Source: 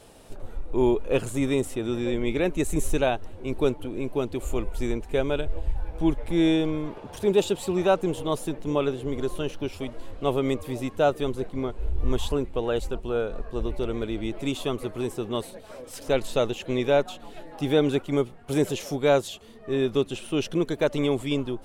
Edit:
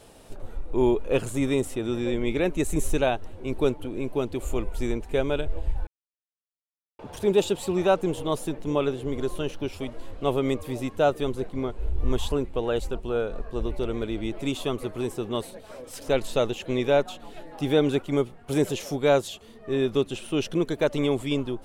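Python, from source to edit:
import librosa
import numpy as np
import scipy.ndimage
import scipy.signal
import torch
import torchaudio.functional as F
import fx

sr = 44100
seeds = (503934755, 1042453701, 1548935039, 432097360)

y = fx.edit(x, sr, fx.silence(start_s=5.87, length_s=1.12), tone=tone)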